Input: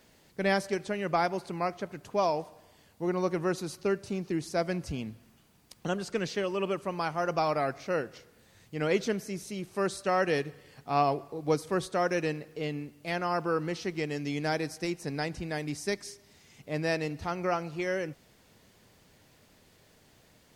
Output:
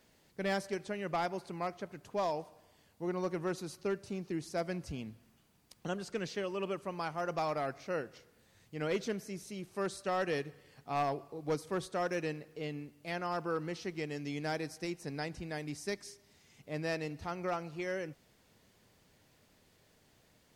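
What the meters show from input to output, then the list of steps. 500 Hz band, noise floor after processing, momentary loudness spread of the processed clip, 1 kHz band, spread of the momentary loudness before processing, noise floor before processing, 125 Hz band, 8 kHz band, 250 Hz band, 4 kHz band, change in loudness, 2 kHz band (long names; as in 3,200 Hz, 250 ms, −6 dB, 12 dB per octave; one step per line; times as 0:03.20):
−6.0 dB, −68 dBFS, 9 LU, −6.5 dB, 9 LU, −62 dBFS, −6.0 dB, −6.0 dB, −6.0 dB, −6.0 dB, −6.5 dB, −6.5 dB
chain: hard clipping −20.5 dBFS, distortion −20 dB
level −6 dB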